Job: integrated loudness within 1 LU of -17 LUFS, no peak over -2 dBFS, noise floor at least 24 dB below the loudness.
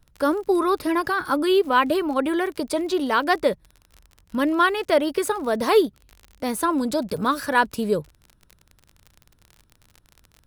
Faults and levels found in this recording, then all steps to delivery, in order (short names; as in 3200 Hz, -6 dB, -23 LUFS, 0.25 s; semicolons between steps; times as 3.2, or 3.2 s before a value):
ticks 32/s; loudness -22.5 LUFS; peak -6.5 dBFS; loudness target -17.0 LUFS
-> de-click; gain +5.5 dB; limiter -2 dBFS